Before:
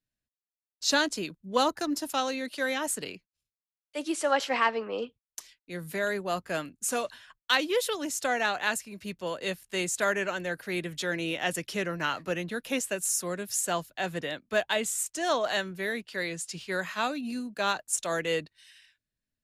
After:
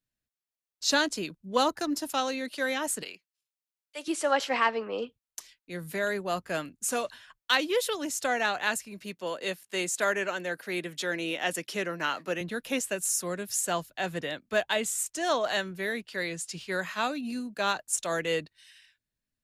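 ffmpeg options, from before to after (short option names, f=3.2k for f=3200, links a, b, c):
-filter_complex "[0:a]asettb=1/sr,asplit=3[a][b][c];[a]atrim=end=3.034[d];[b]atrim=start=3.03:end=4.08,asetpts=PTS-STARTPTS,afade=t=in:d=0.004:c=qsin,afade=t=out:st=1.046:d=0.004:c=qsin,highpass=f=1k:p=1[e];[c]atrim=start=4.076[f];[d][e]acrossfade=d=0.004:c1=hsin:c2=qsin[g];[g][f]acrossfade=d=0.004:c1=qsin:c2=hsin,asettb=1/sr,asplit=3[h][i][j];[h]atrim=end=9.024[k];[i]atrim=start=9.02:end=12.41,asetpts=PTS-STARTPTS,afade=t=in:d=0.004:c=qsin,afade=t=out:st=3.386:d=0.004:c=qsin,highpass=210[l];[j]atrim=start=12.406[m];[k][l]acrossfade=d=0.004:c1=hsin:c2=qsin[n];[n][m]acrossfade=d=0.004:c1=qsin:c2=hsin"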